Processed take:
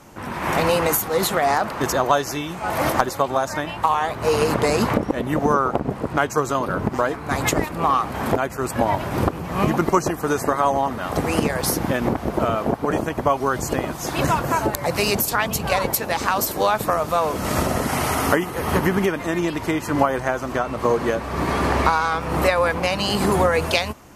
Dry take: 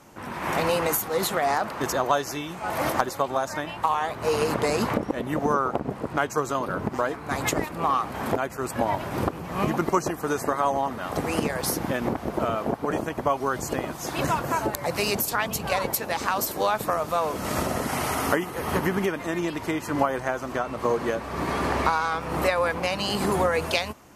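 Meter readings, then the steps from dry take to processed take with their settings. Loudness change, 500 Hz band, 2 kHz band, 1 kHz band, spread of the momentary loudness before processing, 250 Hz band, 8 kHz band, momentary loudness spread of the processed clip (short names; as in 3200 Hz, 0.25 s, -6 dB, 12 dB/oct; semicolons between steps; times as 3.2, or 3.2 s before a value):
+5.0 dB, +4.5 dB, +4.5 dB, +4.5 dB, 5 LU, +5.5 dB, +4.5 dB, 5 LU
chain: low shelf 98 Hz +6 dB; gain +4.5 dB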